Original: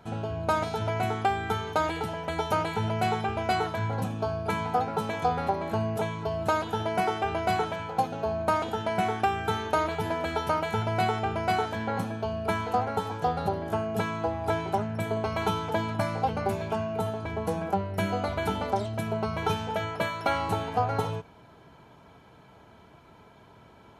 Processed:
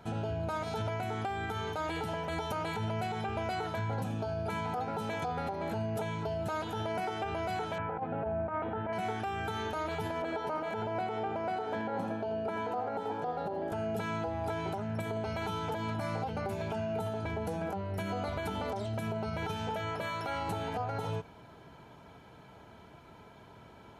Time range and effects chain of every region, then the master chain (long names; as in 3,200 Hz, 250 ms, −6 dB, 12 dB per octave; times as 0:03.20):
0:07.78–0:08.93: low-pass filter 2,100 Hz 24 dB per octave + compressor whose output falls as the input rises −28 dBFS, ratio −0.5
0:10.22–0:13.72: high-pass filter 350 Hz + spectral tilt −3.5 dB per octave + single-tap delay 83 ms −11 dB
whole clip: notch filter 1,100 Hz, Q 21; downward compressor, threshold −29 dBFS; brickwall limiter −26 dBFS